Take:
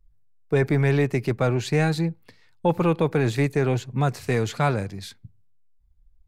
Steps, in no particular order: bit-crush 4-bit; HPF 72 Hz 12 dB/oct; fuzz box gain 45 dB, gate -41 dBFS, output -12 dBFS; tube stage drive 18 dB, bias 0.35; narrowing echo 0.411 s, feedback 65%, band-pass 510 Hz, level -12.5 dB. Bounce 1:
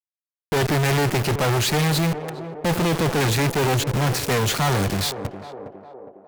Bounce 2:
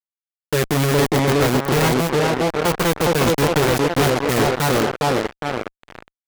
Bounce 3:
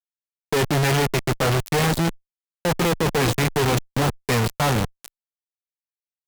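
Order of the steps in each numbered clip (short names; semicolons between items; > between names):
HPF > fuzz box > bit-crush > narrowing echo > tube stage; tube stage > HPF > bit-crush > narrowing echo > fuzz box; narrowing echo > bit-crush > HPF > fuzz box > tube stage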